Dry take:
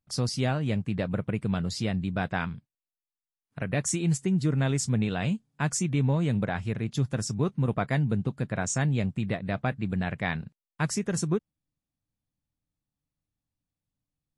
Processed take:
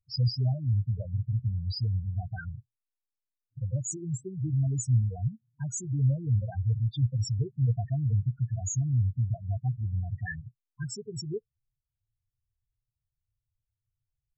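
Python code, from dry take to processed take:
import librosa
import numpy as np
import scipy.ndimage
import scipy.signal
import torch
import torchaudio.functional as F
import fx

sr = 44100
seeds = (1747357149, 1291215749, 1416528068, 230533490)

y = fx.spec_topn(x, sr, count=4)
y = fx.curve_eq(y, sr, hz=(120.0, 190.0, 450.0, 1200.0, 1800.0), db=(0, -25, -8, -18, 1))
y = y * 10.0 ** (7.0 / 20.0)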